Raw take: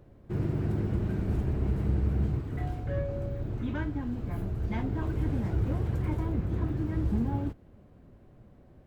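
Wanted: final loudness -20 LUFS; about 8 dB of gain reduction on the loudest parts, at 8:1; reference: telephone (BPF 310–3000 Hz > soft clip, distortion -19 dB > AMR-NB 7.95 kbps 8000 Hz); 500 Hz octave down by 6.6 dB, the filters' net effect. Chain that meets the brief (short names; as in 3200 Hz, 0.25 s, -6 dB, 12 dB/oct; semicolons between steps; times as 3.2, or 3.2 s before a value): bell 500 Hz -7.5 dB; compressor 8:1, threshold -32 dBFS; BPF 310–3000 Hz; soft clip -39 dBFS; gain +29 dB; AMR-NB 7.95 kbps 8000 Hz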